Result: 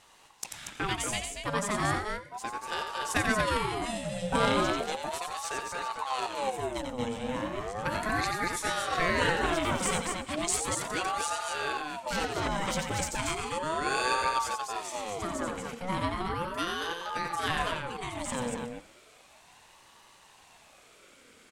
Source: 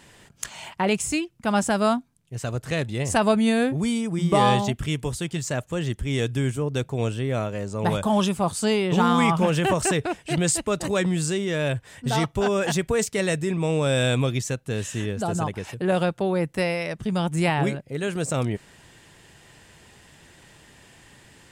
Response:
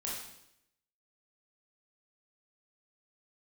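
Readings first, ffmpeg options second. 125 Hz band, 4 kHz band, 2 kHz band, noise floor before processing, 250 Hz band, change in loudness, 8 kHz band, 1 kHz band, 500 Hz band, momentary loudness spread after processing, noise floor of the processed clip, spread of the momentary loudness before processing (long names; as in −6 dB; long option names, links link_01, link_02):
−14.0 dB, −3.5 dB, −2.0 dB, −54 dBFS, −12.0 dB, −7.0 dB, −4.0 dB, −3.0 dB, −9.0 dB, 8 LU, −58 dBFS, 9 LU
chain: -filter_complex "[0:a]equalizer=frequency=310:width_type=o:width=1.3:gain=-10,aecho=1:1:89|235:0.501|0.562,aeval=exprs='0.531*(cos(1*acos(clip(val(0)/0.531,-1,1)))-cos(1*PI/2))+0.0596*(cos(3*acos(clip(val(0)/0.531,-1,1)))-cos(3*PI/2))+0.0335*(cos(4*acos(clip(val(0)/0.531,-1,1)))-cos(4*PI/2))+0.0188*(cos(6*acos(clip(val(0)/0.531,-1,1)))-cos(6*PI/2))':channel_layout=same,asplit=2[link_01][link_02];[1:a]atrim=start_sample=2205,asetrate=61740,aresample=44100,adelay=86[link_03];[link_02][link_03]afir=irnorm=-1:irlink=0,volume=-14.5dB[link_04];[link_01][link_04]amix=inputs=2:normalize=0,aeval=exprs='val(0)*sin(2*PI*700*n/s+700*0.5/0.35*sin(2*PI*0.35*n/s))':channel_layout=same"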